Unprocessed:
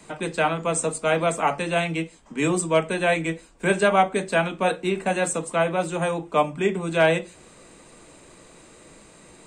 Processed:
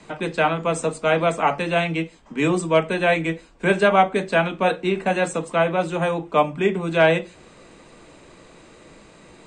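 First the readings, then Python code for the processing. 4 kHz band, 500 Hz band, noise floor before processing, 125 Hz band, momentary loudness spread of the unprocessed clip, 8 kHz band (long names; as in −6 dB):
+2.0 dB, +2.5 dB, −51 dBFS, +2.5 dB, 7 LU, −6.5 dB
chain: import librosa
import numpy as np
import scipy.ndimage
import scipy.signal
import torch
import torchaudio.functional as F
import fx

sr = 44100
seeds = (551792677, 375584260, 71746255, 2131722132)

y = scipy.signal.sosfilt(scipy.signal.butter(2, 5200.0, 'lowpass', fs=sr, output='sos'), x)
y = y * 10.0 ** (2.5 / 20.0)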